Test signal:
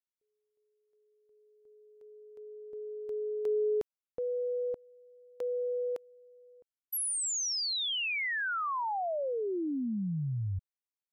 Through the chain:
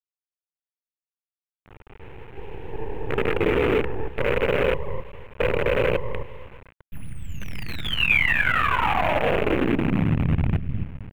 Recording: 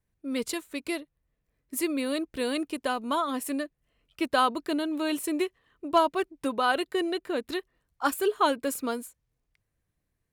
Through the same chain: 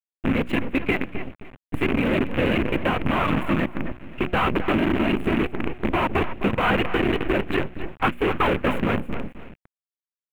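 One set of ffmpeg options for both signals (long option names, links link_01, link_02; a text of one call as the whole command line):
ffmpeg -i in.wav -filter_complex "[0:a]afftfilt=real='hypot(re,im)*cos(2*PI*random(0))':imag='hypot(re,im)*sin(2*PI*random(1))':win_size=512:overlap=0.75,acrossover=split=110[link_01][link_02];[link_02]volume=32dB,asoftclip=hard,volume=-32dB[link_03];[link_01][link_03]amix=inputs=2:normalize=0,acompressor=threshold=-38dB:ratio=3:attack=70:release=183:knee=6:detection=peak,bandreject=frequency=60:width_type=h:width=6,bandreject=frequency=120:width_type=h:width=6,bandreject=frequency=180:width_type=h:width=6,bandreject=frequency=240:width_type=h:width=6,bandreject=frequency=300:width_type=h:width=6,bandreject=frequency=360:width_type=h:width=6,asplit=2[link_04][link_05];[link_05]adelay=262,lowpass=frequency=2200:poles=1,volume=-5dB,asplit=2[link_06][link_07];[link_07]adelay=262,lowpass=frequency=2200:poles=1,volume=0.25,asplit=2[link_08][link_09];[link_09]adelay=262,lowpass=frequency=2200:poles=1,volume=0.25[link_10];[link_04][link_06][link_08][link_10]amix=inputs=4:normalize=0,asplit=2[link_11][link_12];[link_12]adynamicsmooth=sensitivity=8:basefreq=4400,volume=1.5dB[link_13];[link_11][link_13]amix=inputs=2:normalize=0,acrusher=bits=6:dc=4:mix=0:aa=0.000001,bass=frequency=250:gain=11,treble=frequency=4000:gain=-6,alimiter=limit=-20dB:level=0:latency=1:release=299,highshelf=frequency=3600:width_type=q:width=3:gain=-12,volume=8.5dB" out.wav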